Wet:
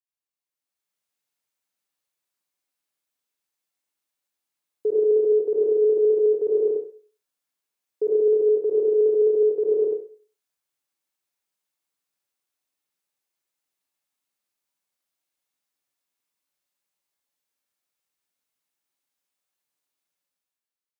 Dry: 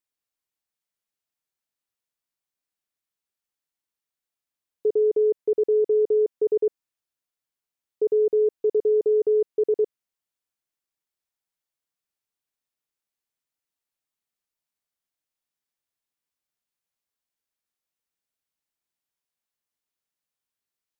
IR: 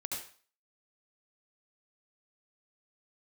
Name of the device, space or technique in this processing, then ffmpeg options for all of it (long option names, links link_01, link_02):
far laptop microphone: -filter_complex "[1:a]atrim=start_sample=2205[link_01];[0:a][link_01]afir=irnorm=-1:irlink=0,highpass=frequency=170:poles=1,dynaudnorm=framelen=110:gausssize=13:maxgain=11dB,volume=-7.5dB"